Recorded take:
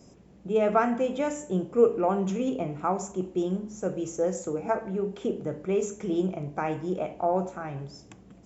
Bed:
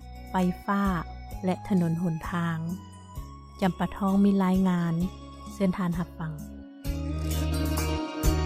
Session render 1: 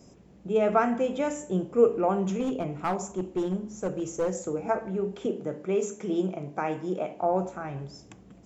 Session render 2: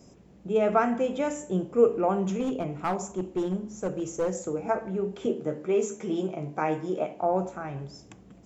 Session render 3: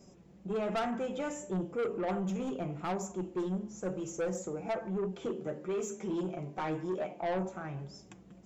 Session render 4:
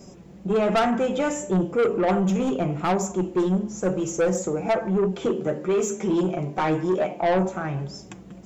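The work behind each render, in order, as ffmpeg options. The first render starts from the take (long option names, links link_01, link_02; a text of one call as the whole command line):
ffmpeg -i in.wav -filter_complex "[0:a]asettb=1/sr,asplit=3[link_01][link_02][link_03];[link_01]atrim=end=2.404[link_04];[link_02]atrim=start=2.4:end=4.33,asetpts=PTS-STARTPTS,afade=type=in:duration=0.004:curve=qsin,afade=type=out:start_time=1.926:duration=0.004:curve=qsin,aeval=exprs='clip(val(0),-1,0.0596)':channel_layout=same[link_05];[link_03]atrim=start=4.326[link_06];[link_04][link_05]acrossfade=duration=0.004:curve1=hsin:curve2=qsin[link_07];[link_07][link_06]acrossfade=duration=0.004:curve1=qsin:curve2=hsin,asettb=1/sr,asplit=3[link_08][link_09][link_10];[link_08]atrim=end=5.264[link_11];[link_09]atrim=start=5.26:end=7.22,asetpts=PTS-STARTPTS,afade=type=in:duration=0.004:curve=qsin,afade=type=out:start_time=1.956:duration=0.004:curve=qsin,highpass=160[link_12];[link_10]atrim=start=7.216[link_13];[link_11][link_12]acrossfade=duration=0.004:curve1=hsin:curve2=qsin[link_14];[link_14][link_13]acrossfade=duration=0.004:curve1=qsin:curve2=hsin" out.wav
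ffmpeg -i in.wav -filter_complex "[0:a]asettb=1/sr,asplit=3[link_01][link_02][link_03];[link_01]atrim=end=5.184[link_04];[link_02]atrim=start=5.18:end=7.04,asetpts=PTS-STARTPTS,afade=type=in:duration=0.004:curve=qsin,afade=type=out:start_time=1.856:duration=0.004:curve=qsin,asplit=2[link_05][link_06];[link_06]adelay=13,volume=-5.5dB[link_07];[link_05][link_07]amix=inputs=2:normalize=0,atrim=end_sample=82026[link_08];[link_03]atrim=start=7.036[link_09];[link_04][link_08]acrossfade=duration=0.004:curve1=hsin:curve2=qsin[link_10];[link_10][link_09]acrossfade=duration=0.004:curve1=qsin:curve2=hsin" out.wav
ffmpeg -i in.wav -af "flanger=delay=5:depth=1.1:regen=43:speed=2:shape=triangular,asoftclip=type=tanh:threshold=-28.5dB" out.wav
ffmpeg -i in.wav -af "volume=12dB" out.wav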